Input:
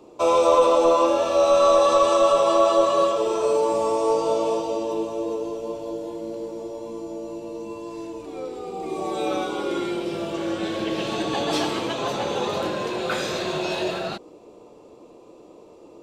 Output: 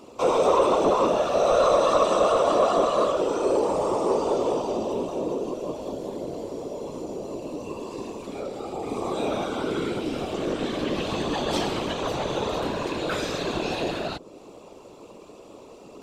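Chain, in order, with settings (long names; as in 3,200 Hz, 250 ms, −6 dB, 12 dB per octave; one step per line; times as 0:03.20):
random phases in short frames
in parallel at −7 dB: soft clipping −17 dBFS, distortion −11 dB
on the sum: low-shelf EQ 200 Hz +5.5 dB
one half of a high-frequency compander encoder only
level −5.5 dB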